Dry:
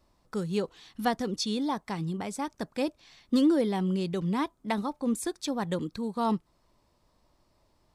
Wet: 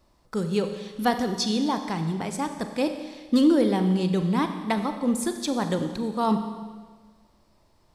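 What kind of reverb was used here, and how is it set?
Schroeder reverb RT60 1.5 s, combs from 29 ms, DRR 7 dB; trim +4 dB

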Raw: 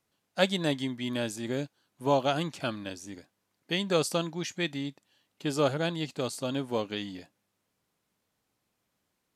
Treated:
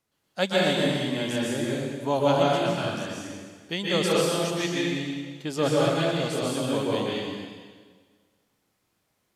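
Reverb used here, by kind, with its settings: plate-style reverb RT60 1.6 s, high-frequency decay 0.95×, pre-delay 115 ms, DRR -5.5 dB; trim -1 dB

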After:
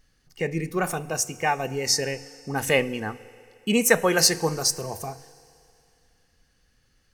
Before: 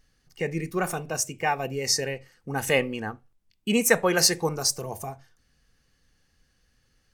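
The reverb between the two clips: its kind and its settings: FDN reverb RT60 2.6 s, low-frequency decay 0.7×, high-frequency decay 1×, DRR 17.5 dB; trim +1.5 dB

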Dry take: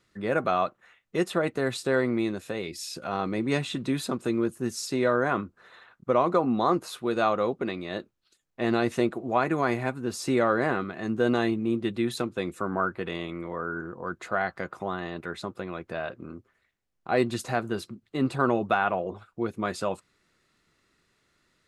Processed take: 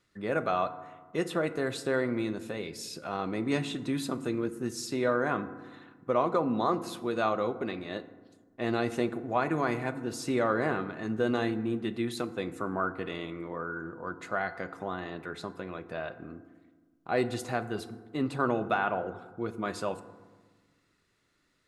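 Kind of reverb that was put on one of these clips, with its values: FDN reverb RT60 1.4 s, low-frequency decay 1.4×, high-frequency decay 0.4×, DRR 11 dB; trim -4 dB

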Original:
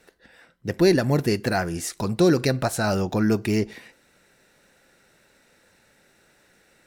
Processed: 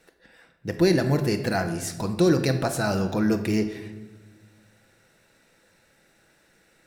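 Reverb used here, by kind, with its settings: simulated room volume 860 m³, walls mixed, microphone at 0.67 m; trim -2.5 dB

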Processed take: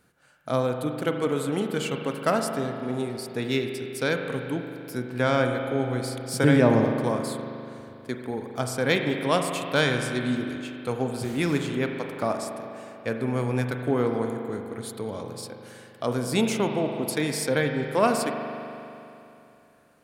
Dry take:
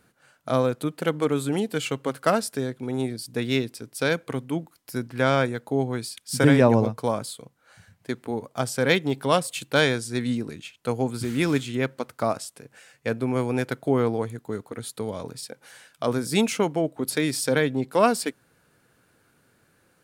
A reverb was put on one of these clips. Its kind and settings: spring tank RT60 2.9 s, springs 40 ms, chirp 70 ms, DRR 4 dB; trim -2.5 dB

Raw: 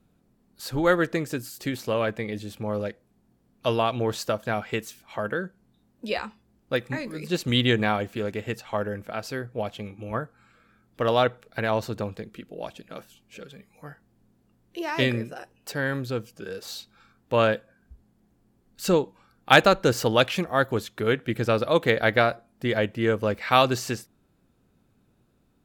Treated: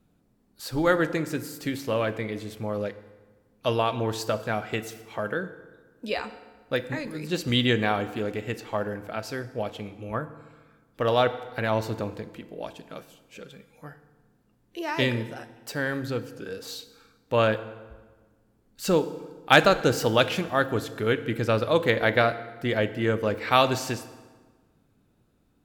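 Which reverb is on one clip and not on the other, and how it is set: FDN reverb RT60 1.4 s, low-frequency decay 1.05×, high-frequency decay 0.75×, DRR 11 dB; trim -1 dB

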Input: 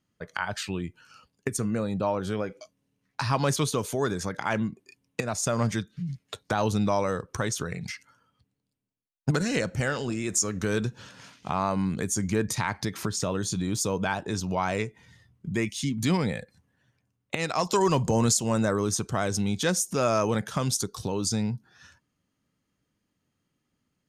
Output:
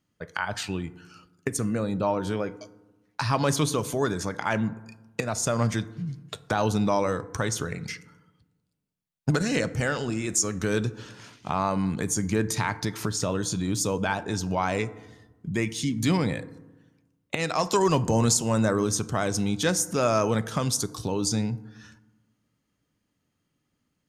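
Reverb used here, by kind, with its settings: FDN reverb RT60 1.1 s, low-frequency decay 1.25×, high-frequency decay 0.4×, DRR 14.5 dB; trim +1 dB

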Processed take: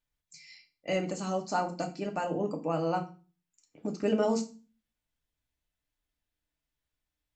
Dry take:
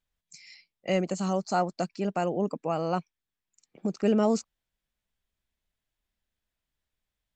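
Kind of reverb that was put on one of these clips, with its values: FDN reverb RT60 0.34 s, low-frequency decay 1.5×, high-frequency decay 0.95×, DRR 2.5 dB; trim -4 dB

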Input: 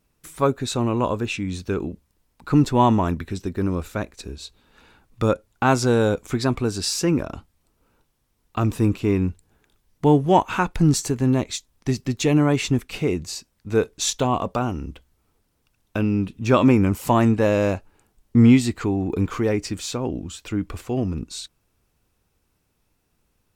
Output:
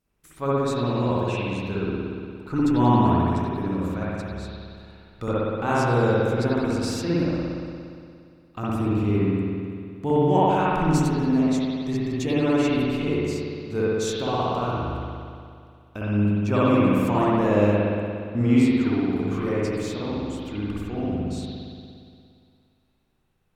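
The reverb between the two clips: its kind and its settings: spring tank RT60 2.3 s, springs 58 ms, chirp 40 ms, DRR -8.5 dB; trim -10.5 dB

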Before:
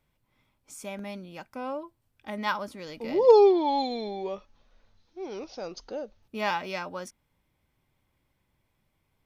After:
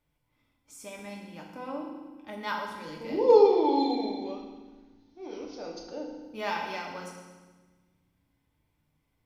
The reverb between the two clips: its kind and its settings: FDN reverb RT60 1.3 s, low-frequency decay 1.6×, high-frequency decay 0.95×, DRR -1 dB; trim -6 dB

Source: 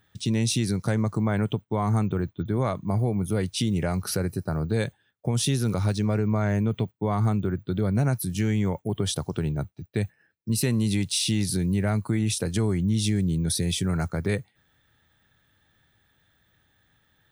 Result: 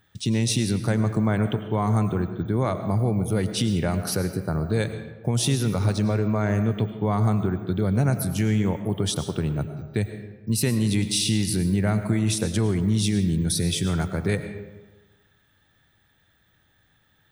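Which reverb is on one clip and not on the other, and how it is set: algorithmic reverb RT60 1.2 s, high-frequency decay 0.6×, pre-delay 65 ms, DRR 9 dB; trim +1.5 dB

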